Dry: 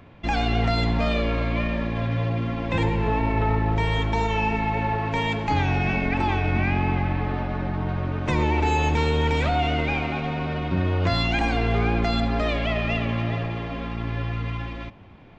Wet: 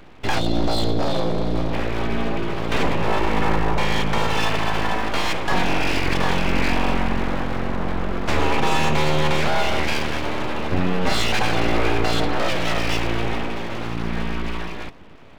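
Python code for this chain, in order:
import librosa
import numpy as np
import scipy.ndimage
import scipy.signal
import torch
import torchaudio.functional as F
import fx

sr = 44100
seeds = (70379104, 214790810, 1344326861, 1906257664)

y = fx.spec_box(x, sr, start_s=0.39, length_s=1.34, low_hz=710.0, high_hz=3200.0, gain_db=-17)
y = np.abs(y)
y = F.gain(torch.from_numpy(y), 5.0).numpy()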